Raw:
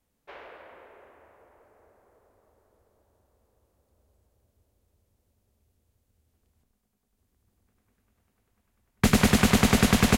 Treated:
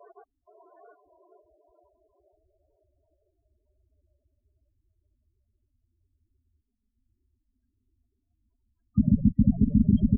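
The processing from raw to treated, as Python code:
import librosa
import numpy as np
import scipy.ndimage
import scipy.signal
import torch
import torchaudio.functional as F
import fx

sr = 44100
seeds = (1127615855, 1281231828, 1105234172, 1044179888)

y = fx.block_reorder(x, sr, ms=118.0, group=4)
y = fx.env_flanger(y, sr, rest_ms=3.1, full_db=-17.5)
y = fx.spec_topn(y, sr, count=8)
y = y * librosa.db_to_amplitude(2.0)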